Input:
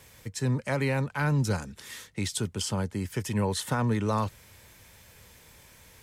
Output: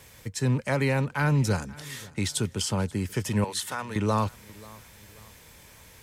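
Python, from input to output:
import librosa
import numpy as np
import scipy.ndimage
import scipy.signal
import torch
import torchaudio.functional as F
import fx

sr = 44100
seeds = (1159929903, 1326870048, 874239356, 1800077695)

y = fx.rattle_buzz(x, sr, strikes_db=-28.0, level_db=-40.0)
y = fx.highpass(y, sr, hz=1400.0, slope=6, at=(3.44, 3.96))
y = fx.echo_feedback(y, sr, ms=535, feedback_pct=39, wet_db=-22.0)
y = y * librosa.db_to_amplitude(2.5)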